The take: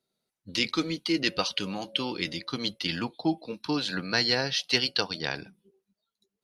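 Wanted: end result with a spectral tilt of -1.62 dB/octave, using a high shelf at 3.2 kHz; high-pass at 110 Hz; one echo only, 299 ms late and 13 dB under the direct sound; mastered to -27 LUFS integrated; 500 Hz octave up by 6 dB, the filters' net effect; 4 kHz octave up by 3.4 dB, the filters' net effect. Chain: high-pass 110 Hz; peaking EQ 500 Hz +7.5 dB; treble shelf 3.2 kHz -7 dB; peaking EQ 4 kHz +9 dB; delay 299 ms -13 dB; trim -1.5 dB

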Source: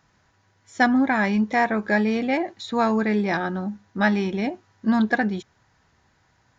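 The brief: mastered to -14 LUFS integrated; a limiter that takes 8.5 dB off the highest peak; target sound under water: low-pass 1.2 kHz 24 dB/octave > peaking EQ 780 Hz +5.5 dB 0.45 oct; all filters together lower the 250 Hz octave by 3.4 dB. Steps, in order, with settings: peaking EQ 250 Hz -4 dB; peak limiter -17 dBFS; low-pass 1.2 kHz 24 dB/octave; peaking EQ 780 Hz +5.5 dB 0.45 oct; trim +13 dB

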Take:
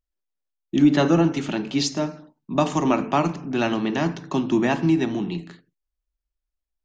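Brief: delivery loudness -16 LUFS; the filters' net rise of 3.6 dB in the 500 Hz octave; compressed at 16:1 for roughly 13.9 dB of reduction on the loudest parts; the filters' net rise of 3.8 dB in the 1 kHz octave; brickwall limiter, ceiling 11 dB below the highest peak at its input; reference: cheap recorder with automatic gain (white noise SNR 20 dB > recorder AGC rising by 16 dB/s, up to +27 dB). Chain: peaking EQ 500 Hz +4 dB; peaking EQ 1 kHz +3.5 dB; compression 16:1, threshold -24 dBFS; peak limiter -23 dBFS; white noise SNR 20 dB; recorder AGC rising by 16 dB/s, up to +27 dB; trim +17 dB

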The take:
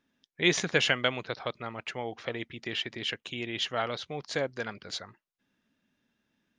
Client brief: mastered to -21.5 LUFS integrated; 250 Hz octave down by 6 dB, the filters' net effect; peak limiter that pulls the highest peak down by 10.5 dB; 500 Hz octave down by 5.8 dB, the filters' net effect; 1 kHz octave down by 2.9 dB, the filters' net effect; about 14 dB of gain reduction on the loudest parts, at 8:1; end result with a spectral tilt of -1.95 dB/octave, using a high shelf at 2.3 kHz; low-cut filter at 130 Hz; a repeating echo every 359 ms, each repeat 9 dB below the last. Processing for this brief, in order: high-pass 130 Hz; peaking EQ 250 Hz -6.5 dB; peaking EQ 500 Hz -4.5 dB; peaking EQ 1 kHz -4 dB; treble shelf 2.3 kHz +5.5 dB; compression 8:1, threshold -34 dBFS; peak limiter -27.5 dBFS; feedback delay 359 ms, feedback 35%, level -9 dB; trim +19 dB

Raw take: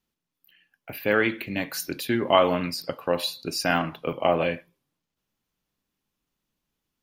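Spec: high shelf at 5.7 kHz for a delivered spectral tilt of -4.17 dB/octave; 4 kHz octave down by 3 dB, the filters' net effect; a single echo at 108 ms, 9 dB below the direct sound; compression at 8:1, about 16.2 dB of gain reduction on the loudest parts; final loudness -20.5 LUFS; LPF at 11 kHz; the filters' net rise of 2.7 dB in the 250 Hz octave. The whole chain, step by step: low-pass 11 kHz; peaking EQ 250 Hz +3.5 dB; peaking EQ 4 kHz -6.5 dB; treble shelf 5.7 kHz +6 dB; compression 8:1, threshold -30 dBFS; delay 108 ms -9 dB; trim +14.5 dB

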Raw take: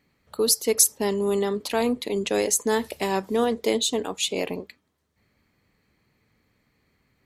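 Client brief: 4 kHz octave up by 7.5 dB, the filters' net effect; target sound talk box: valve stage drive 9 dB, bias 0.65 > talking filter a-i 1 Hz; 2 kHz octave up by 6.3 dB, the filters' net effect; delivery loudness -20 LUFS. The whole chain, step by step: peaking EQ 2 kHz +5.5 dB; peaking EQ 4 kHz +7.5 dB; valve stage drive 9 dB, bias 0.65; talking filter a-i 1 Hz; trim +19 dB

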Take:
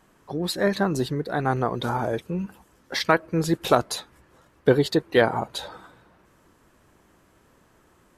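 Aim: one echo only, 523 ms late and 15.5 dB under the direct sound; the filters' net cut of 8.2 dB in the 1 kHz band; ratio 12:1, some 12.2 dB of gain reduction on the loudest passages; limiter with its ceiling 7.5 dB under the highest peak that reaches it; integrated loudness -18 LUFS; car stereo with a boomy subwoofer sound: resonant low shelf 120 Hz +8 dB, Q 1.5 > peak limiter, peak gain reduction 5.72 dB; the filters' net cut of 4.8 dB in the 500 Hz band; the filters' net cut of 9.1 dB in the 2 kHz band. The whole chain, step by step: peaking EQ 500 Hz -3 dB; peaking EQ 1 kHz -8 dB; peaking EQ 2 kHz -8.5 dB; compression 12:1, threshold -29 dBFS; peak limiter -26 dBFS; resonant low shelf 120 Hz +8 dB, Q 1.5; delay 523 ms -15.5 dB; trim +21.5 dB; peak limiter -7.5 dBFS

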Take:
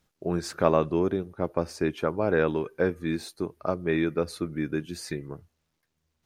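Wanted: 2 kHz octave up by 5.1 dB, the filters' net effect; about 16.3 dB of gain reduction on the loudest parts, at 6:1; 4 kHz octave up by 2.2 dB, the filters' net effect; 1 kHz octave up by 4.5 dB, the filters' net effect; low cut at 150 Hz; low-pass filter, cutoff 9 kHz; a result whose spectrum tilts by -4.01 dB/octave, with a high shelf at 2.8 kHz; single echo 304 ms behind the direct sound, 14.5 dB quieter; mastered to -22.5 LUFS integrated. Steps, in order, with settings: high-pass 150 Hz; low-pass 9 kHz; peaking EQ 1 kHz +4.5 dB; peaking EQ 2 kHz +6 dB; treble shelf 2.8 kHz -6 dB; peaking EQ 4 kHz +6 dB; compression 6:1, threshold -32 dBFS; delay 304 ms -14.5 dB; trim +15 dB

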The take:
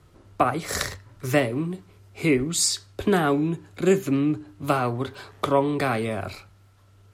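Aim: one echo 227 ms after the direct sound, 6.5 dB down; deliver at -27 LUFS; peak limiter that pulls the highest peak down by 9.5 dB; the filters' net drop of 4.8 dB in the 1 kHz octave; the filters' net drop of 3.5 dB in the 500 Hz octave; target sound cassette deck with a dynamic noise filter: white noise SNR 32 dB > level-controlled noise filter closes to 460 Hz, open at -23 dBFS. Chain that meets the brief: peaking EQ 500 Hz -3.5 dB; peaking EQ 1 kHz -5.5 dB; peak limiter -17 dBFS; delay 227 ms -6.5 dB; white noise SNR 32 dB; level-controlled noise filter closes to 460 Hz, open at -23 dBFS; trim +1 dB

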